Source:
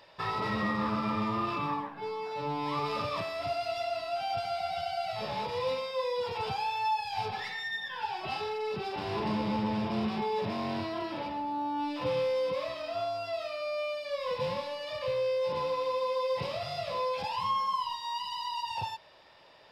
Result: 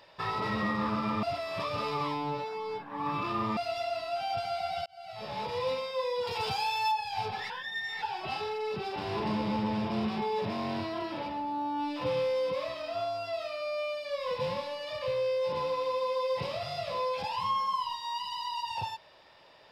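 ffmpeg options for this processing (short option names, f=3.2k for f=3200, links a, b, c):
-filter_complex "[0:a]asettb=1/sr,asplit=3[a][b][c];[a]atrim=end=6.274[d];[b]atrim=start=6.27:end=6.92,asetpts=PTS-STARTPTS,afade=t=in:d=0.004:c=qsin,afade=t=out:st=0.646:d=0.004:c=qsin,highshelf=f=3.6k:g=11[e];[c]atrim=start=6.916[f];[d][e]acrossfade=d=0.004:c1=hsin:c2=qsin[g];[g][f]acrossfade=d=0.004:c1=qsin:c2=hsin,asplit=6[h][i][j][k][l][m];[h]atrim=end=1.232[n];[i]atrim=start=1.228:end=3.572,asetpts=PTS-STARTPTS,areverse[o];[j]atrim=start=3.568:end=4.86,asetpts=PTS-STARTPTS,afade=t=out:st=1.288:d=0.004:c=hsin[p];[k]atrim=start=4.86:end=7.502,asetpts=PTS-STARTPTS,afade=t=in:d=0.64[q];[l]atrim=start=7.498:end=8.022,asetpts=PTS-STARTPTS,areverse[r];[m]atrim=start=8.018[s];[n][o]acrossfade=d=0.004:c1=hsin:c2=hsin[t];[p][q]concat=n=2:v=0:a=1[u];[t][u]acrossfade=d=0.004:c1=hsin:c2=hsin[v];[v][r]acrossfade=d=0.004:c1=hsin:c2=hsin[w];[w][s]acrossfade=d=0.004:c1=hsin:c2=hsin"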